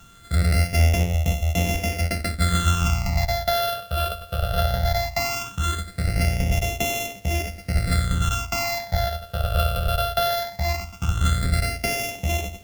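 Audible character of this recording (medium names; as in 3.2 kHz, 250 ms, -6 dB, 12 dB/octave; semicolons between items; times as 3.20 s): a buzz of ramps at a fixed pitch in blocks of 64 samples; phasing stages 8, 0.18 Hz, lowest notch 270–1400 Hz; a quantiser's noise floor 10-bit, dither none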